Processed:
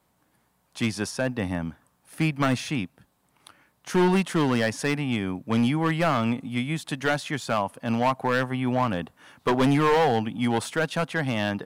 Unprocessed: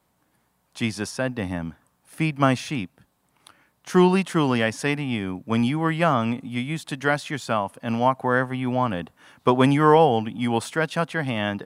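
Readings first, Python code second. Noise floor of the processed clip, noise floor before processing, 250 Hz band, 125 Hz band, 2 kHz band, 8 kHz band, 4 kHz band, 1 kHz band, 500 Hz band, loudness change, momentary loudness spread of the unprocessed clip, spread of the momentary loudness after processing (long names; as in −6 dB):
−69 dBFS, −69 dBFS, −1.5 dB, −2.0 dB, −1.5 dB, +0.5 dB, −1.0 dB, −3.5 dB, −3.0 dB, −2.5 dB, 11 LU, 9 LU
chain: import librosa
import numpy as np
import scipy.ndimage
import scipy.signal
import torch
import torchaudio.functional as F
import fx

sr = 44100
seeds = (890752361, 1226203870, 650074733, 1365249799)

y = np.clip(x, -10.0 ** (-16.5 / 20.0), 10.0 ** (-16.5 / 20.0))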